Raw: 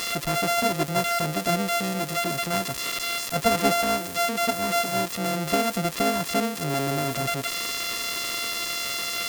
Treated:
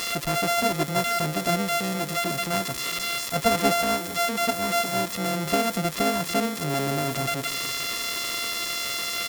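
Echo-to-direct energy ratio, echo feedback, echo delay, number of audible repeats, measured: -16.0 dB, no steady repeat, 0.449 s, 1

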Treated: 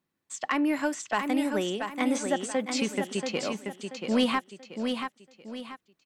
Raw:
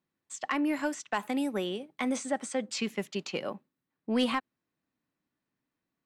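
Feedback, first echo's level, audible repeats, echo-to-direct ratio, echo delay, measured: 36%, -6.0 dB, 4, -5.5 dB, 0.683 s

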